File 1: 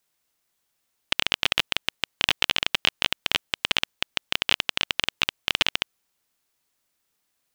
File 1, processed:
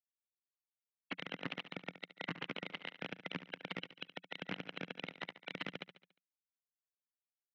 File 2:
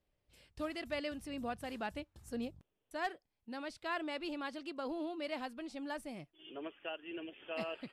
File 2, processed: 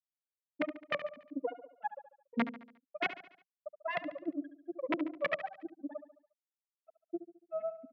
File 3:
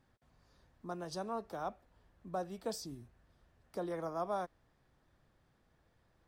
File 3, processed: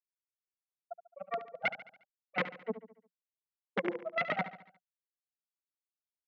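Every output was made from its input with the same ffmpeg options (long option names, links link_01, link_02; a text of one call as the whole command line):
ffmpeg -i in.wav -filter_complex "[0:a]bandreject=frequency=60:width_type=h:width=6,bandreject=frequency=120:width_type=h:width=6,bandreject=frequency=180:width_type=h:width=6,bandreject=frequency=240:width_type=h:width=6,bandreject=frequency=300:width_type=h:width=6,afftfilt=real='re*gte(hypot(re,im),0.0891)':imag='im*gte(hypot(re,im),0.0891)':win_size=1024:overlap=0.75,acompressor=threshold=-28dB:ratio=8,alimiter=limit=-16.5dB:level=0:latency=1:release=239,acontrast=74,aeval=exprs='(tanh(31.6*val(0)+0.7)-tanh(0.7))/31.6':channel_layout=same,acrossover=split=2300[link_01][link_02];[link_01]aeval=exprs='val(0)*(1-1/2+1/2*cos(2*PI*9.5*n/s))':channel_layout=same[link_03];[link_02]aeval=exprs='val(0)*(1-1/2-1/2*cos(2*PI*9.5*n/s))':channel_layout=same[link_04];[link_03][link_04]amix=inputs=2:normalize=0,aeval=exprs='(mod(39.8*val(0)+1,2)-1)/39.8':channel_layout=same,highpass=frequency=140:width=0.5412,highpass=frequency=140:width=1.3066,equalizer=frequency=180:width_type=q:width=4:gain=8,equalizer=frequency=270:width_type=q:width=4:gain=5,equalizer=frequency=500:width_type=q:width=4:gain=4,equalizer=frequency=2100:width_type=q:width=4:gain=8,lowpass=frequency=3100:width=0.5412,lowpass=frequency=3100:width=1.3066,aecho=1:1:71|142|213|284|355:0.237|0.116|0.0569|0.0279|0.0137,adynamicequalizer=threshold=0.00158:dfrequency=1800:dqfactor=0.7:tfrequency=1800:tqfactor=0.7:attack=5:release=100:ratio=0.375:range=2.5:mode=cutabove:tftype=highshelf,volume=8dB" out.wav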